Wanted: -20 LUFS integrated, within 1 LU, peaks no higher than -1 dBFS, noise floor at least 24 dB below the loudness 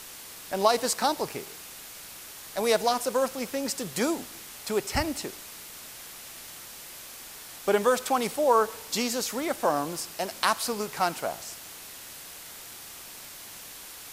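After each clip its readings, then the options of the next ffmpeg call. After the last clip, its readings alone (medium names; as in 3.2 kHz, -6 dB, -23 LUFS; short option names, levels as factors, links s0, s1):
noise floor -44 dBFS; noise floor target -52 dBFS; loudness -27.5 LUFS; peak level -7.0 dBFS; loudness target -20.0 LUFS
-> -af "afftdn=nr=8:nf=-44"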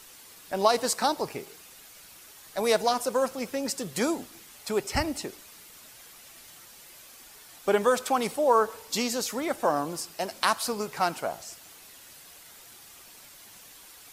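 noise floor -51 dBFS; noise floor target -52 dBFS
-> -af "afftdn=nr=6:nf=-51"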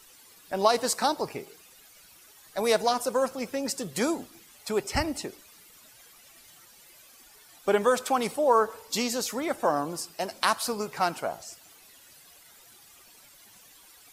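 noise floor -55 dBFS; loudness -27.5 LUFS; peak level -7.0 dBFS; loudness target -20.0 LUFS
-> -af "volume=2.37,alimiter=limit=0.891:level=0:latency=1"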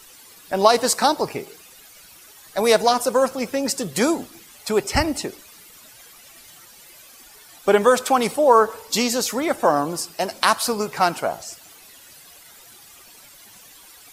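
loudness -20.5 LUFS; peak level -1.0 dBFS; noise floor -47 dBFS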